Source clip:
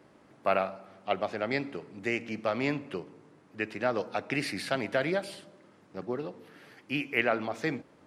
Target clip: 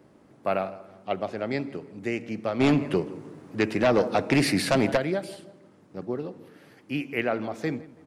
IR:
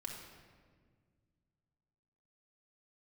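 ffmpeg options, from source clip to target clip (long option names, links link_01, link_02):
-filter_complex "[0:a]tiltshelf=frequency=740:gain=5,asplit=2[link_01][link_02];[link_02]adelay=165,lowpass=frequency=2100:poles=1,volume=-18.5dB,asplit=2[link_03][link_04];[link_04]adelay=165,lowpass=frequency=2100:poles=1,volume=0.42,asplit=2[link_05][link_06];[link_06]adelay=165,lowpass=frequency=2100:poles=1,volume=0.42[link_07];[link_01][link_03][link_05][link_07]amix=inputs=4:normalize=0,asplit=3[link_08][link_09][link_10];[link_08]afade=type=out:start_time=2.59:duration=0.02[link_11];[link_09]aeval=exprs='0.188*sin(PI/2*2*val(0)/0.188)':channel_layout=same,afade=type=in:start_time=2.59:duration=0.02,afade=type=out:start_time=4.96:duration=0.02[link_12];[link_10]afade=type=in:start_time=4.96:duration=0.02[link_13];[link_11][link_12][link_13]amix=inputs=3:normalize=0,highshelf=frequency=5300:gain=8"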